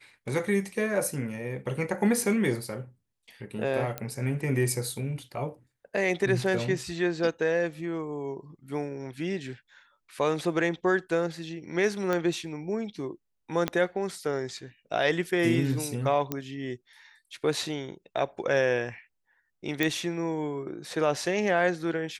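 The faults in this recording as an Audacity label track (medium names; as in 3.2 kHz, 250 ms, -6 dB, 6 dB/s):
3.980000	3.980000	pop -16 dBFS
12.130000	12.130000	pop -15 dBFS
13.680000	13.680000	pop -12 dBFS
16.320000	16.320000	pop -14 dBFS
19.830000	19.830000	pop -11 dBFS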